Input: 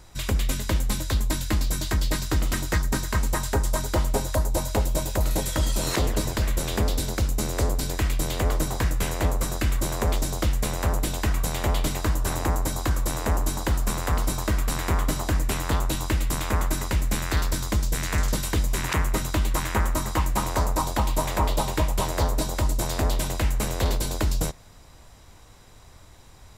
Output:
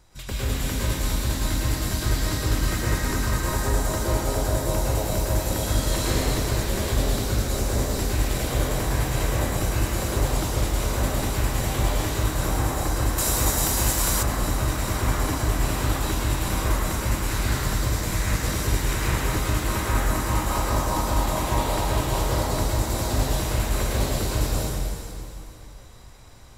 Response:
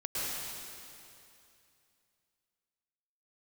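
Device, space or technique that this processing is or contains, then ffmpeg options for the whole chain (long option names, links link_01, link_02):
stairwell: -filter_complex "[1:a]atrim=start_sample=2205[link_01];[0:a][link_01]afir=irnorm=-1:irlink=0,asettb=1/sr,asplit=3[link_02][link_03][link_04];[link_02]atrim=end=13.184[link_05];[link_03]atrim=start=13.18:end=14.23,asetpts=PTS-STARTPTS,afade=type=in:duration=0.004:curve=qsin,afade=type=out:start_time=1.046:duration=0.004:curve=qsin,highshelf=frequency=3300:gain=11.5[link_06];[link_04]atrim=start=14.226[link_07];[link_05][link_06]acrossfade=duration=0.004:curve1=hsin:curve2=qsin[link_08];[link_08][link_07]acrossfade=duration=0.004:curve1=qsin:curve2=hsin,volume=-4.5dB"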